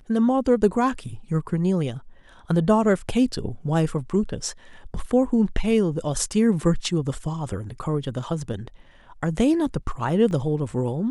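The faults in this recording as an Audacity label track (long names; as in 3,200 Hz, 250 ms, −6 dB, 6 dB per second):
10.310000	10.310000	drop-out 2.1 ms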